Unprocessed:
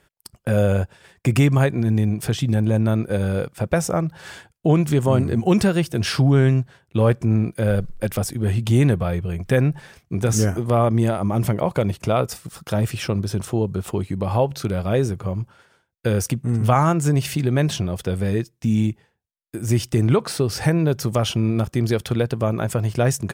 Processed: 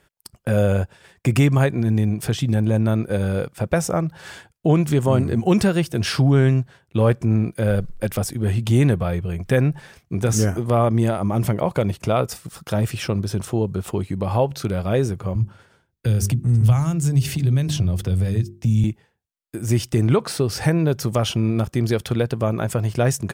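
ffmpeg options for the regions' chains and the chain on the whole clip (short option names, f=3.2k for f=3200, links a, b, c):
-filter_complex "[0:a]asettb=1/sr,asplit=3[a][b][c];[a]atrim=end=15.354[d];[b]atrim=start=15.35:end=18.84,asetpts=PTS-STARTPTS,afade=t=in:d=0.004:c=qsin,afade=t=out:st=3.486:d=0.004:c=qsin,lowshelf=f=290:g=10,bandreject=f=50:t=h:w=6,bandreject=f=100:t=h:w=6,bandreject=f=150:t=h:w=6,bandreject=f=200:t=h:w=6,bandreject=f=250:t=h:w=6,bandreject=f=300:t=h:w=6,bandreject=f=350:t=h:w=6,bandreject=f=400:t=h:w=6,acrossover=split=130|3000[e][f][g];[f]acompressor=threshold=-26dB:ratio=6:attack=3.2:release=140:knee=2.83:detection=peak[h];[e][h][g]amix=inputs=3:normalize=0[i];[c]atrim=start=18.836[j];[d][i]acrossfade=d=0.004:c1=hsin:c2=qsin[k];[k][j]acrossfade=d=0.004:c1=qsin:c2=hsin"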